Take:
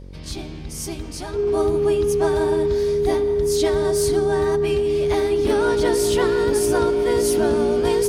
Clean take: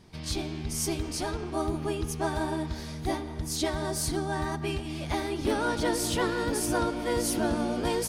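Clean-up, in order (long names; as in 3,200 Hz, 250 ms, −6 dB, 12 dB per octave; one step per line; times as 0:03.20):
hum removal 46.3 Hz, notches 12
notch filter 410 Hz, Q 30
level 0 dB, from 0:01.47 −4.5 dB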